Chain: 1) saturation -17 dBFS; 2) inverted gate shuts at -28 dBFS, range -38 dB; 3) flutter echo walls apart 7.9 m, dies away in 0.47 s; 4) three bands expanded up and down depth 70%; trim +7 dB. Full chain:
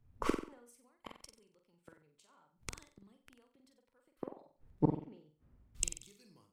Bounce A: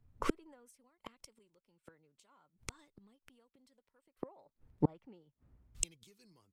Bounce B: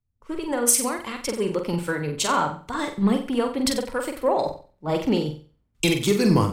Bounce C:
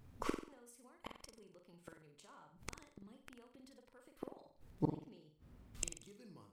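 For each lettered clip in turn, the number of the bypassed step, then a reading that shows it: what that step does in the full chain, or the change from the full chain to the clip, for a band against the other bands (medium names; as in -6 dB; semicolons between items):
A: 3, momentary loudness spread change +1 LU; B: 2, momentary loudness spread change -11 LU; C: 4, 2 kHz band +2.0 dB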